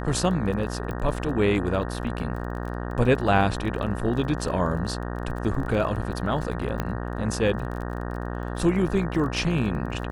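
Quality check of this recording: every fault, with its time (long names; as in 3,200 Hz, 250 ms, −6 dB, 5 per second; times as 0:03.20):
mains buzz 60 Hz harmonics 31 −31 dBFS
surface crackle 25 per second −34 dBFS
0:00.91: click −21 dBFS
0:06.80: click −13 dBFS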